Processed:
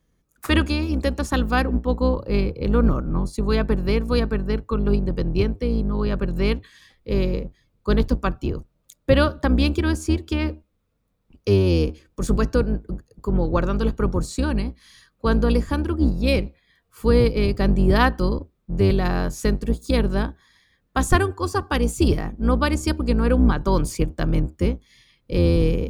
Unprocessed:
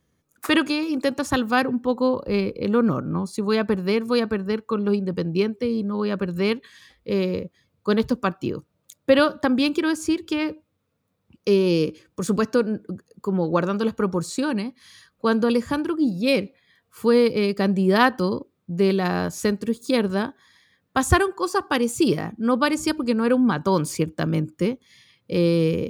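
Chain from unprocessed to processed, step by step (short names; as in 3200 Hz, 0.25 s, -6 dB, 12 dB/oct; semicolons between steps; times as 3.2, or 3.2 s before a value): octaver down 2 oct, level +4 dB; gain -1.5 dB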